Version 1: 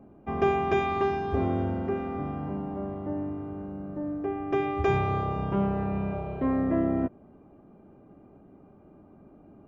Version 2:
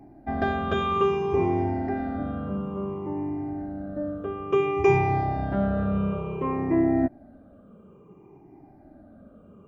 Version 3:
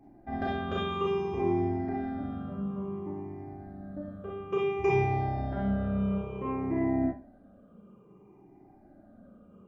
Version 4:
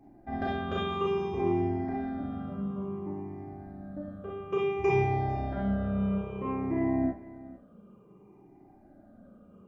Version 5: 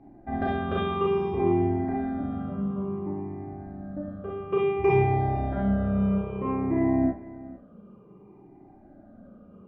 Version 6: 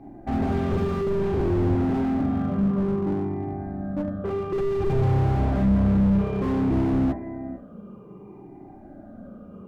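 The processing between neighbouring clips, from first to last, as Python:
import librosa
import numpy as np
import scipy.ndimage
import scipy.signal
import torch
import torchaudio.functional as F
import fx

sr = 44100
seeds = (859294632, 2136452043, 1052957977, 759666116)

y1 = fx.spec_ripple(x, sr, per_octave=0.75, drift_hz=-0.58, depth_db=16)
y2 = fx.rev_schroeder(y1, sr, rt60_s=0.3, comb_ms=31, drr_db=-2.0)
y2 = F.gain(torch.from_numpy(y2), -9.0).numpy()
y3 = y2 + 10.0 ** (-18.5 / 20.0) * np.pad(y2, (int(452 * sr / 1000.0), 0))[:len(y2)]
y4 = fx.air_absorb(y3, sr, metres=270.0)
y4 = F.gain(torch.from_numpy(y4), 5.0).numpy()
y5 = fx.slew_limit(y4, sr, full_power_hz=11.0)
y5 = F.gain(torch.from_numpy(y5), 7.5).numpy()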